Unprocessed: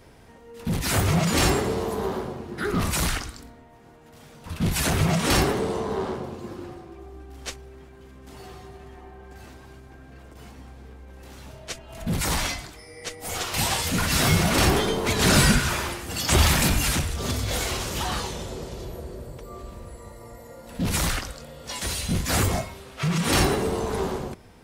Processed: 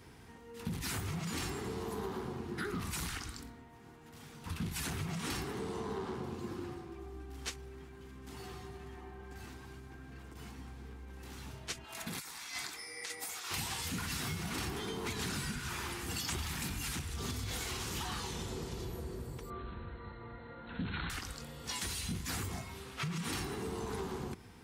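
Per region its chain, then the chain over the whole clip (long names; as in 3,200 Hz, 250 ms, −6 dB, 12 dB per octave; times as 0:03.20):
0:11.84–0:13.51: high-pass filter 1,000 Hz 6 dB per octave + notch filter 3,000 Hz + compressor whose output falls as the input rises −39 dBFS
0:19.50–0:21.10: linear-phase brick-wall low-pass 4,300 Hz + parametric band 1,500 Hz +11 dB 0.27 octaves
whole clip: high-pass filter 51 Hz; parametric band 590 Hz −14.5 dB 0.37 octaves; downward compressor 12 to 1, threshold −32 dBFS; level −3 dB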